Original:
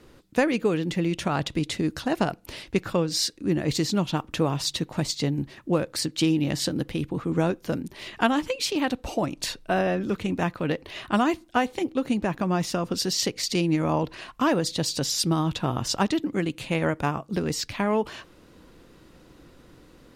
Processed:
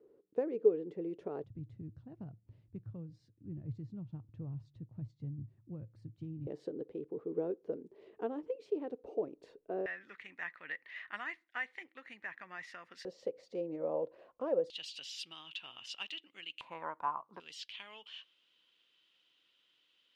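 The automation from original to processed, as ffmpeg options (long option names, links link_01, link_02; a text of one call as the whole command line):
ffmpeg -i in.wav -af "asetnsamples=nb_out_samples=441:pad=0,asendcmd='1.44 bandpass f 110;6.47 bandpass f 430;9.86 bandpass f 1900;13.05 bandpass f 520;14.7 bandpass f 2900;16.61 bandpass f 1000;17.4 bandpass f 3100',bandpass=frequency=430:width_type=q:width=8:csg=0" out.wav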